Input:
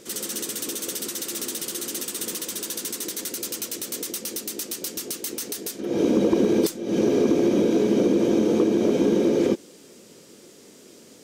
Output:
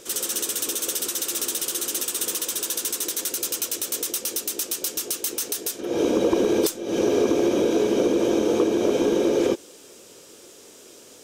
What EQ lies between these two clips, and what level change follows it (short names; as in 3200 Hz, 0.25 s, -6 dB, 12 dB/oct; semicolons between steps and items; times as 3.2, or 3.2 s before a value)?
bell 190 Hz -13 dB 1.4 oct; bell 2000 Hz -5.5 dB 0.3 oct; bell 4500 Hz -4.5 dB 0.21 oct; +4.5 dB